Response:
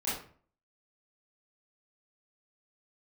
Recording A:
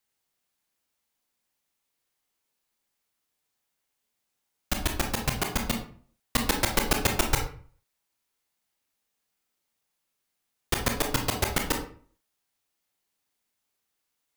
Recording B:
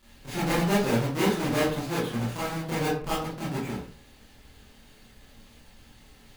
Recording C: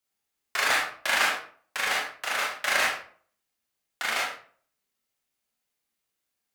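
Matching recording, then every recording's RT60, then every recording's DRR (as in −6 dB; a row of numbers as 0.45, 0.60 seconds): B; 0.45, 0.45, 0.45 seconds; 2.0, −11.0, −4.0 decibels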